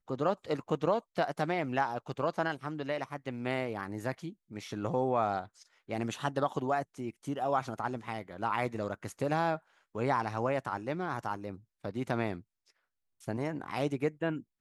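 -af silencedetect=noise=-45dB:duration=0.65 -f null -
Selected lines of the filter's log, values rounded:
silence_start: 12.41
silence_end: 13.22 | silence_duration: 0.81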